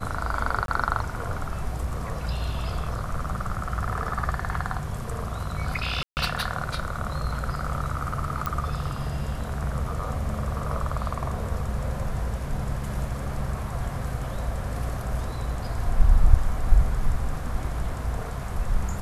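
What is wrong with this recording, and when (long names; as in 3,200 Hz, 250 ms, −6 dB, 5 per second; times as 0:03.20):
0:00.66–0:00.68: drop-out 22 ms
0:06.03–0:06.17: drop-out 139 ms
0:08.46: click −13 dBFS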